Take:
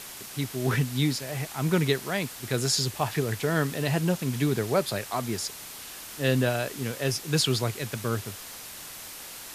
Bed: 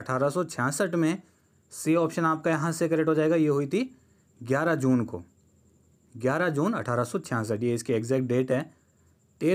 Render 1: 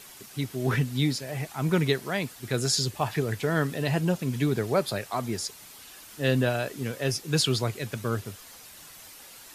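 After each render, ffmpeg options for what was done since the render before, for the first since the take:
ffmpeg -i in.wav -af "afftdn=noise_reduction=8:noise_floor=-42" out.wav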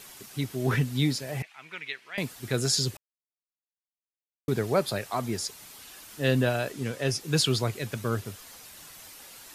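ffmpeg -i in.wav -filter_complex "[0:a]asettb=1/sr,asplit=3[link_01][link_02][link_03];[link_01]atrim=end=1.424[link_04];[link_02]atrim=start=1.42:end=2.18,asetpts=PTS-STARTPTS,afade=type=in:duration=0.004:curve=qsin,afade=type=out:start_time=0.756:duration=0.004:curve=qsin,bandpass=frequency=2400:width_type=q:width=2.6[link_05];[link_03]atrim=start=2.176[link_06];[link_04][link_05]acrossfade=duration=0.004:curve1=hsin:curve2=qsin[link_07];[link_07][link_06]acrossfade=duration=0.004:curve1=qsin:curve2=hsin,asettb=1/sr,asplit=3[link_08][link_09][link_10];[link_08]atrim=end=6.724[link_11];[link_09]atrim=start=6.72:end=7.21,asetpts=PTS-STARTPTS,afade=type=in:duration=0.004:curve=qsin,afade=type=out:start_time=0.486:duration=0.004:curve=qsin,lowpass=11000[link_12];[link_10]atrim=start=7.206[link_13];[link_11][link_12]acrossfade=duration=0.004:curve1=hsin:curve2=qsin[link_14];[link_14][link_13]acrossfade=duration=0.004:curve1=qsin:curve2=hsin,asplit=3[link_15][link_16][link_17];[link_15]atrim=end=2.97,asetpts=PTS-STARTPTS,afade=type=out:start_time=2.966:duration=0.004:curve=hsin[link_18];[link_16]atrim=start=2.97:end=4.48,asetpts=PTS-STARTPTS,volume=0[link_19];[link_17]atrim=start=4.48,asetpts=PTS-STARTPTS,afade=type=in:duration=0.004:curve=hsin[link_20];[link_18][link_19][link_20]concat=n=3:v=0:a=1" out.wav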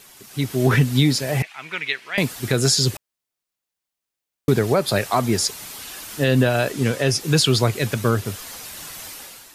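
ffmpeg -i in.wav -af "alimiter=limit=-18.5dB:level=0:latency=1:release=198,dynaudnorm=framelen=120:gausssize=7:maxgain=11.5dB" out.wav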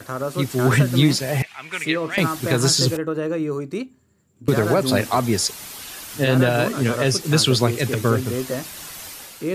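ffmpeg -i in.wav -i bed.wav -filter_complex "[1:a]volume=-1dB[link_01];[0:a][link_01]amix=inputs=2:normalize=0" out.wav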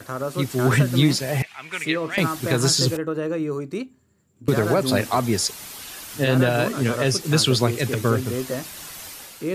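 ffmpeg -i in.wav -af "volume=-1.5dB" out.wav

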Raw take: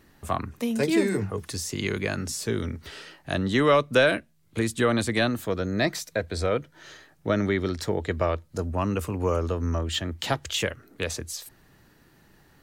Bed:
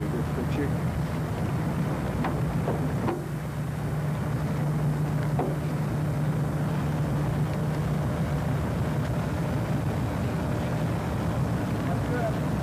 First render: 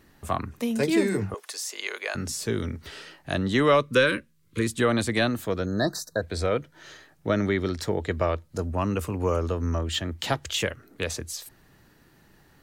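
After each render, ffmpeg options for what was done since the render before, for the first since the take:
ffmpeg -i in.wav -filter_complex "[0:a]asettb=1/sr,asplit=3[link_01][link_02][link_03];[link_01]atrim=end=1.344[link_04];[link_02]atrim=start=1.34:end=2.15,asetpts=PTS-STARTPTS,afade=type=in:duration=0.004:curve=qsin,afade=type=out:start_time=0.806:duration=0.004:curve=qsin,highpass=frequency=530:width=0.5412,highpass=frequency=530:width=1.3066[link_05];[link_03]atrim=start=2.146[link_06];[link_04][link_05]acrossfade=duration=0.004:curve1=hsin:curve2=qsin[link_07];[link_07][link_06]acrossfade=duration=0.004:curve1=qsin:curve2=hsin,asettb=1/sr,asplit=3[link_08][link_09][link_10];[link_08]atrim=end=3.824[link_11];[link_09]atrim=start=3.82:end=4.67,asetpts=PTS-STARTPTS,afade=type=in:duration=0.004:curve=qsin,afade=type=out:start_time=0.846:duration=0.004:curve=qsin,asuperstop=centerf=730:order=12:qfactor=2[link_12];[link_10]atrim=start=4.666[link_13];[link_11][link_12]acrossfade=duration=0.004:curve1=hsin:curve2=qsin[link_14];[link_14][link_13]acrossfade=duration=0.004:curve1=qsin:curve2=hsin,asplit=3[link_15][link_16][link_17];[link_15]afade=type=out:start_time=5.65:duration=0.02[link_18];[link_16]asuperstop=centerf=2600:order=20:qfactor=1.3,afade=type=in:start_time=5.65:duration=0.02,afade=type=out:start_time=6.21:duration=0.02[link_19];[link_17]afade=type=in:start_time=6.21:duration=0.02[link_20];[link_18][link_19][link_20]amix=inputs=3:normalize=0" out.wav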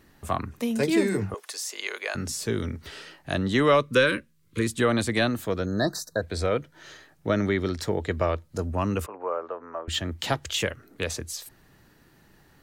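ffmpeg -i in.wav -filter_complex "[0:a]asettb=1/sr,asplit=3[link_01][link_02][link_03];[link_01]atrim=end=9.064[link_04];[link_02]atrim=start=9.06:end=9.88,asetpts=PTS-STARTPTS,afade=type=in:duration=0.004:curve=qsin,afade=type=out:start_time=0.816:duration=0.004:curve=qsin,asuperpass=centerf=930:order=4:qfactor=0.82[link_05];[link_03]atrim=start=9.876[link_06];[link_04][link_05]acrossfade=duration=0.004:curve1=hsin:curve2=qsin[link_07];[link_07][link_06]acrossfade=duration=0.004:curve1=qsin:curve2=hsin" out.wav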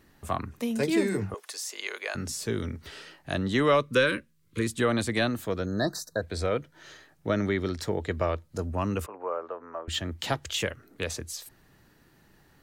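ffmpeg -i in.wav -af "volume=-2.5dB" out.wav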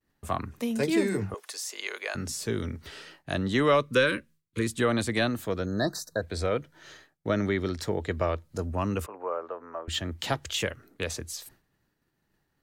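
ffmpeg -i in.wav -af "agate=range=-33dB:threshold=-49dB:ratio=3:detection=peak" out.wav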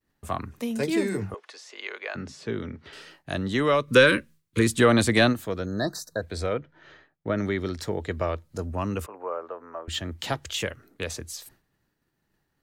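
ffmpeg -i in.wav -filter_complex "[0:a]asettb=1/sr,asplit=3[link_01][link_02][link_03];[link_01]atrim=end=1.354[link_04];[link_02]atrim=start=1.35:end=2.93,asetpts=PTS-STARTPTS,afade=type=in:duration=0.004:curve=qsin,afade=type=out:start_time=1.576:duration=0.004:curve=qsin,highpass=110,lowpass=3300[link_05];[link_03]atrim=start=2.926[link_06];[link_04][link_05]acrossfade=duration=0.004:curve1=hsin:curve2=qsin[link_07];[link_07][link_06]acrossfade=duration=0.004:curve1=qsin:curve2=hsin,asplit=3[link_08][link_09][link_10];[link_08]afade=type=out:start_time=3.87:duration=0.02[link_11];[link_09]acontrast=84,afade=type=in:start_time=3.87:duration=0.02,afade=type=out:start_time=5.32:duration=0.02[link_12];[link_10]afade=type=in:start_time=5.32:duration=0.02[link_13];[link_11][link_12][link_13]amix=inputs=3:normalize=0,asettb=1/sr,asplit=3[link_14][link_15][link_16];[link_14]atrim=end=6.534[link_17];[link_15]atrim=start=6.53:end=7.38,asetpts=PTS-STARTPTS,afade=type=in:duration=0.004:curve=qsin,afade=type=out:start_time=0.846:duration=0.004:curve=qsin,lowpass=2600[link_18];[link_16]atrim=start=7.376[link_19];[link_17][link_18]acrossfade=duration=0.004:curve1=hsin:curve2=qsin[link_20];[link_20][link_19]acrossfade=duration=0.004:curve1=qsin:curve2=hsin" out.wav

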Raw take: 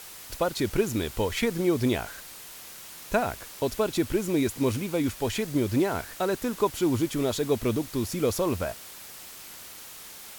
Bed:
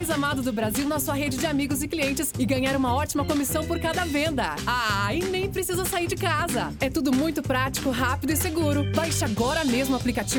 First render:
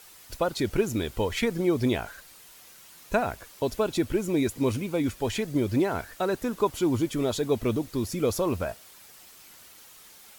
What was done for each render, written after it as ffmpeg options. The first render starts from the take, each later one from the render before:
ffmpeg -i in.wav -af "afftdn=noise_reduction=8:noise_floor=-44" out.wav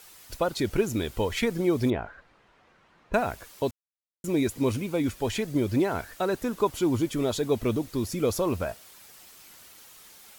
ffmpeg -i in.wav -filter_complex "[0:a]asettb=1/sr,asplit=3[link_01][link_02][link_03];[link_01]atrim=end=1.904[link_04];[link_02]atrim=start=1.9:end=3.14,asetpts=PTS-STARTPTS,afade=type=in:duration=0.004:curve=qsin,afade=type=out:start_time=1.236:duration=0.004:curve=qsin,lowpass=1600[link_05];[link_03]atrim=start=3.136[link_06];[link_04][link_05]acrossfade=duration=0.004:curve1=hsin:curve2=qsin[link_07];[link_07][link_06]acrossfade=duration=0.004:curve1=qsin:curve2=hsin,asplit=3[link_08][link_09][link_10];[link_08]atrim=end=3.71,asetpts=PTS-STARTPTS,afade=type=out:start_time=3.706:duration=0.004:curve=hsin[link_11];[link_09]atrim=start=3.71:end=4.24,asetpts=PTS-STARTPTS,volume=0[link_12];[link_10]atrim=start=4.24,asetpts=PTS-STARTPTS,afade=type=in:duration=0.004:curve=hsin[link_13];[link_11][link_12][link_13]concat=n=3:v=0:a=1" out.wav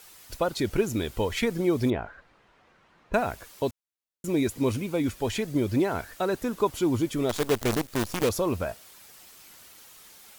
ffmpeg -i in.wav -filter_complex "[0:a]asettb=1/sr,asplit=3[link_01][link_02][link_03];[link_01]atrim=end=7.294[link_04];[link_02]atrim=start=7.29:end=8.29,asetpts=PTS-STARTPTS,afade=type=in:duration=0.004:curve=qsin,afade=type=out:start_time=0.996:duration=0.004:curve=qsin,acrusher=bits=5:dc=4:mix=0:aa=0.000001[link_05];[link_03]atrim=start=8.286[link_06];[link_04][link_05]acrossfade=duration=0.004:curve1=hsin:curve2=qsin[link_07];[link_07][link_06]acrossfade=duration=0.004:curve1=qsin:curve2=hsin" out.wav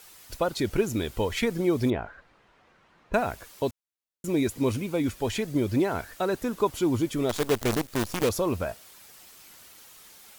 ffmpeg -i in.wav -af anull out.wav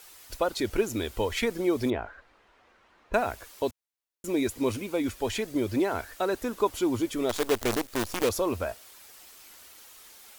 ffmpeg -i in.wav -af "equalizer=frequency=150:width=2.2:gain=-15" out.wav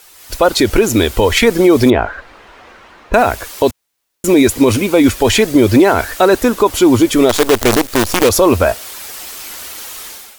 ffmpeg -i in.wav -af "dynaudnorm=framelen=130:gausssize=5:maxgain=14dB,alimiter=level_in=7.5dB:limit=-1dB:release=50:level=0:latency=1" out.wav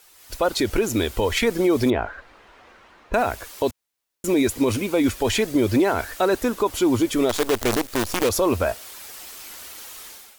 ffmpeg -i in.wav -af "volume=-10dB" out.wav

